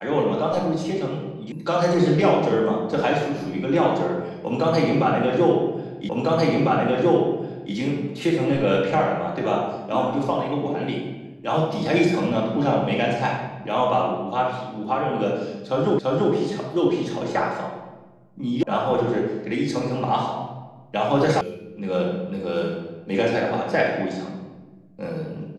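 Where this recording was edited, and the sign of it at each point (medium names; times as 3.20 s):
1.52 s: sound stops dead
6.09 s: repeat of the last 1.65 s
15.99 s: repeat of the last 0.34 s
18.63 s: sound stops dead
21.41 s: sound stops dead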